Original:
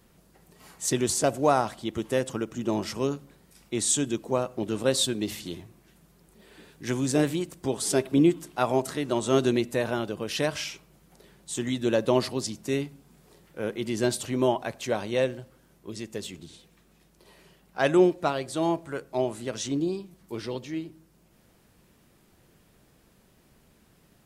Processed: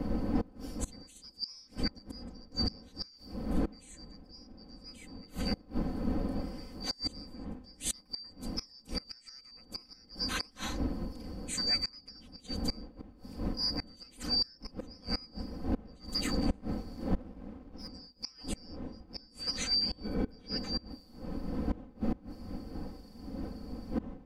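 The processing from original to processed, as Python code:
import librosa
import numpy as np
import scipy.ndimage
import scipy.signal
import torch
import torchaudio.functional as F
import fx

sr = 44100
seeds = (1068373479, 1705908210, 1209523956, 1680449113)

y = fx.band_shuffle(x, sr, order='2341')
y = fx.dmg_wind(y, sr, seeds[0], corner_hz=250.0, level_db=-24.0)
y = fx.gate_flip(y, sr, shuts_db=-16.0, range_db=-26)
y = y + 0.93 * np.pad(y, (int(3.9 * sr / 1000.0), 0))[:len(y)]
y = fx.leveller(y, sr, passes=1, at=(16.08, 17.88))
y = fx.small_body(y, sr, hz=(430.0, 1500.0, 2300.0, 3300.0), ring_ms=45, db=fx.line((20.02, 13.0), (20.56, 9.0)), at=(20.02, 20.56), fade=0.02)
y = y * 10.0 ** (-6.0 / 20.0)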